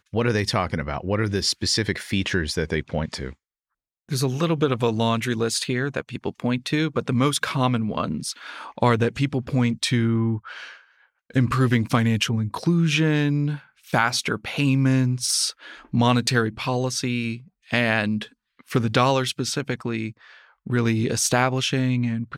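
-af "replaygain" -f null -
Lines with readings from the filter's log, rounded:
track_gain = +4.0 dB
track_peak = 0.378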